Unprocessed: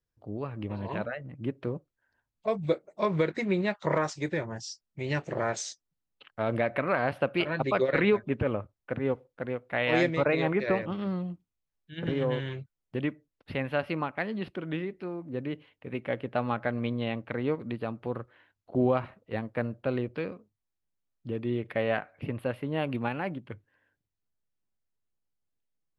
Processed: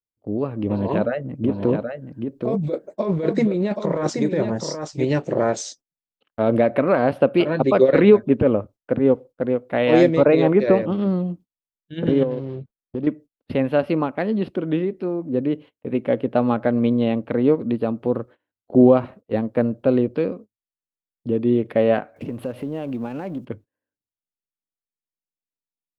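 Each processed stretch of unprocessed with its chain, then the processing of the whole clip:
0.66–5.05 s: compressor with a negative ratio -31 dBFS + delay 777 ms -6 dB
12.23–13.07 s: median filter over 25 samples + low-pass 4.2 kHz 24 dB/octave + compression 2:1, threshold -38 dBFS
22.16–23.45 s: companding laws mixed up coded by mu + compression 2.5:1, threshold -40 dBFS
whole clip: gate -50 dBFS, range -23 dB; graphic EQ 250/500/2000 Hz +8/+6/-5 dB; trim +5 dB

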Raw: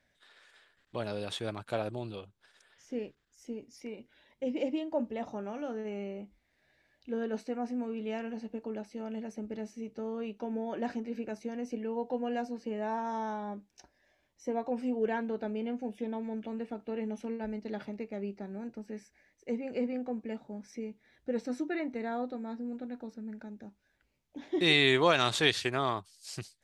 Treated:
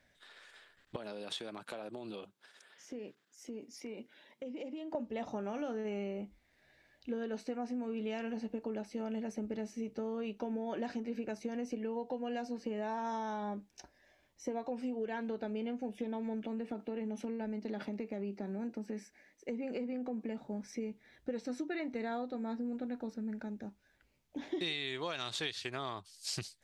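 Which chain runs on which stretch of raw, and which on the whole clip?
0.96–4.95 s: high-pass 170 Hz 24 dB/octave + compression 12:1, threshold -42 dBFS
16.44–20.38 s: resonant low shelf 150 Hz -9.5 dB, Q 1.5 + compression 3:1, threshold -37 dBFS
whole clip: dynamic bell 4.3 kHz, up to +6 dB, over -53 dBFS, Q 0.82; compression 16:1, threshold -37 dBFS; trim +3 dB

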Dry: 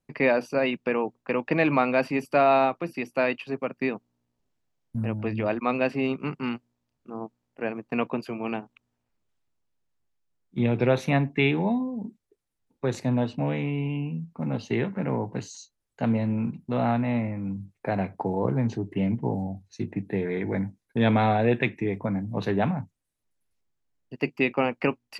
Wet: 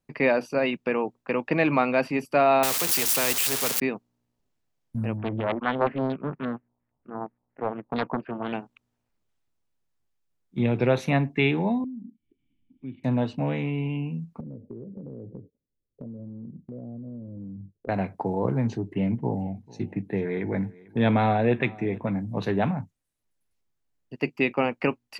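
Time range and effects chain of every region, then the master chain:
2.63–3.80 s: zero-crossing glitches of -18 dBFS + peaking EQ 450 Hz +12 dB 0.31 oct + spectrum-flattening compressor 2:1
5.17–8.53 s: LFO low-pass square 4.3 Hz 880–1900 Hz + distance through air 450 m + loudspeaker Doppler distortion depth 0.58 ms
11.84–13.04 s: peaking EQ 490 Hz -12 dB 0.83 oct + upward compressor, threshold -37 dBFS + cascade formant filter i
14.40–17.89 s: steep low-pass 550 Hz 48 dB/octave + compression 12:1, threshold -35 dBFS
18.80–22.16 s: treble shelf 4.3 kHz -5.5 dB + feedback delay 445 ms, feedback 28%, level -22 dB
whole clip: none

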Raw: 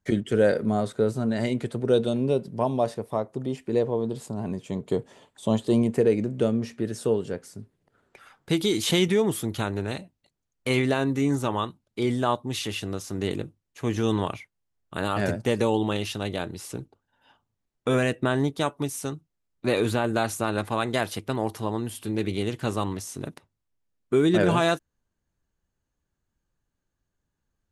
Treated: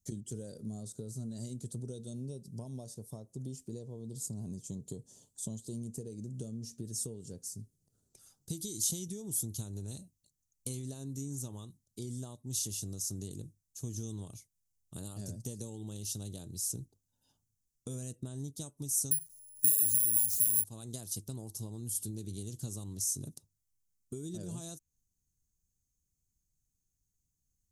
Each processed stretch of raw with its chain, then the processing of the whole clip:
19.11–20.64 s: companding laws mixed up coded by mu + careless resampling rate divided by 4×, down none, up zero stuff
whole clip: compression, threshold -29 dBFS; FFT filter 130 Hz 0 dB, 2.1 kHz -28 dB, 6.2 kHz +10 dB; trim -3 dB

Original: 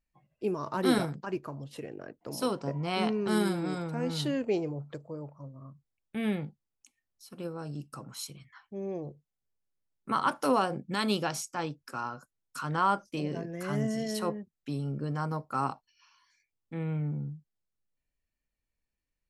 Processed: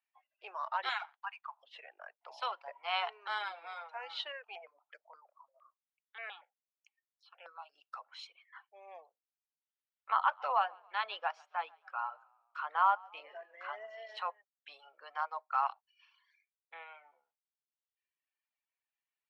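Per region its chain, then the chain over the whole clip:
0.89–1.63 s: steep high-pass 790 Hz 48 dB/octave + band-stop 5.3 kHz, Q 9.8 + careless resampling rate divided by 4×, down none, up hold
4.32–7.78 s: hum notches 60/120/180/240/300 Hz + stepped phaser 8.6 Hz 910–3700 Hz
10.13–14.17 s: low-pass 1.6 kHz 6 dB/octave + bass shelf 200 Hz +9 dB + frequency-shifting echo 138 ms, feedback 46%, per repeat -42 Hz, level -15 dB
whole clip: steep high-pass 720 Hz 36 dB/octave; reverb removal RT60 1.2 s; Chebyshev low-pass 3.3 kHz, order 3; trim +2 dB

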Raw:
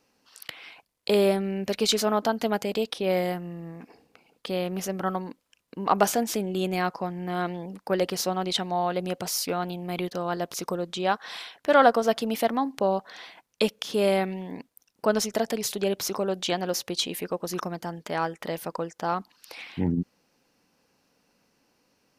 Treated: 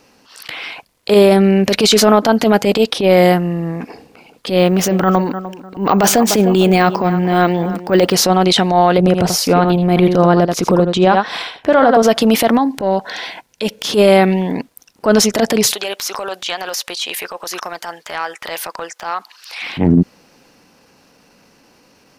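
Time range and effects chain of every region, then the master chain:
4.59–8.14 s: filtered feedback delay 300 ms, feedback 31%, low-pass 1.6 kHz, level -15 dB + careless resampling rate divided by 2×, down filtered, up hold
8.98–12.03 s: tilt EQ -2 dB/octave + transient shaper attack +5 dB, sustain -5 dB + delay 81 ms -11 dB
12.58–13.85 s: compression 2.5:1, threshold -31 dBFS + Butterworth band-stop 1.2 kHz, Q 5.9
15.73–19.62 s: high-pass 940 Hz + compression 3:1, threshold -34 dBFS
whole clip: treble shelf 8.3 kHz -4.5 dB; transient shaper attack -11 dB, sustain +1 dB; loudness maximiser +19 dB; trim -1 dB

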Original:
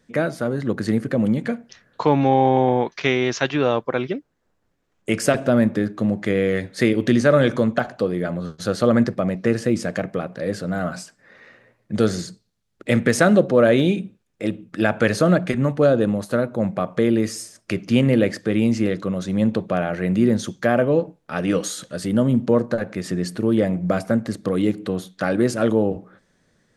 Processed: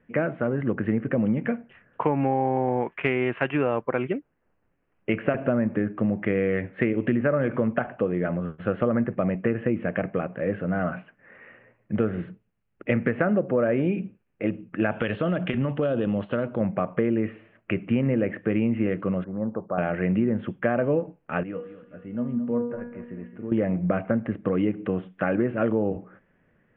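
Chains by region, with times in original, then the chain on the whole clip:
14.91–16.61 s: high-order bell 4.2 kHz +16 dB 1.2 oct + compression 5:1, threshold -18 dBFS
19.24–19.78 s: steep low-pass 1.3 kHz + bass shelf 480 Hz -11 dB
21.43–23.52 s: distance through air 350 m + feedback comb 240 Hz, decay 0.61 s, mix 80% + feedback delay 218 ms, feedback 41%, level -12.5 dB
whole clip: steep low-pass 2.9 kHz 72 dB/octave; low-pass that closes with the level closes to 2.2 kHz, closed at -12 dBFS; compression, threshold -18 dBFS; trim -1 dB

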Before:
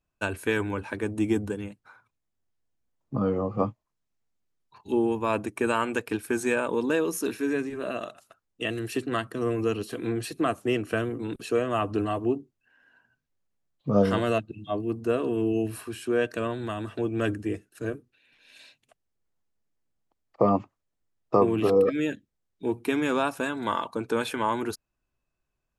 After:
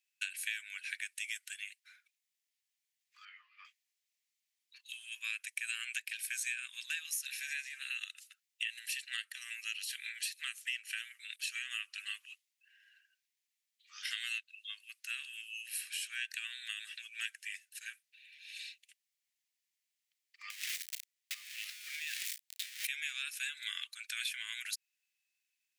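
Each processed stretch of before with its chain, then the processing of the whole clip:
3.25–3.65 s: distance through air 350 m + doubling 19 ms -6.5 dB
20.50–22.87 s: jump at every zero crossing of -26.5 dBFS + doubling 34 ms -13 dB + compression 8:1, threshold -31 dBFS
whole clip: steep high-pass 1.9 kHz 48 dB/octave; compression 6:1, threshold -41 dBFS; trim +6 dB

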